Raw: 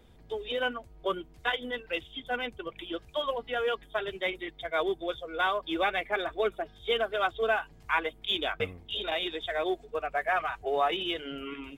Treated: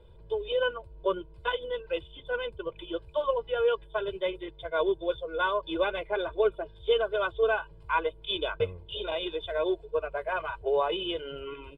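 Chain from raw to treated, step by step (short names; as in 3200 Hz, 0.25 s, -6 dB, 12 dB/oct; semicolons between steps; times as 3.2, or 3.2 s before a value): running mean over 7 samples; bell 1900 Hz -14 dB 0.49 oct; comb 2 ms, depth 92%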